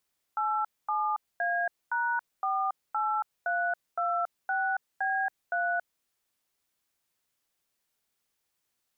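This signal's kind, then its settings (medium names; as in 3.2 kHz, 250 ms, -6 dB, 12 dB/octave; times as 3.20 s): DTMF "87A#48326B3", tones 278 ms, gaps 237 ms, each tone -28.5 dBFS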